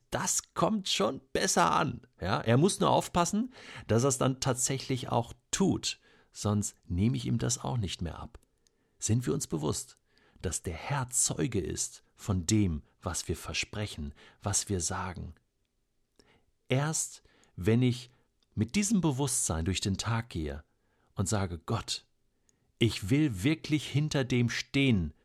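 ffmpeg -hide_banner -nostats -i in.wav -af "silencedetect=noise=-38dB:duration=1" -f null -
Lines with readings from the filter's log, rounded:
silence_start: 15.27
silence_end: 16.71 | silence_duration: 1.43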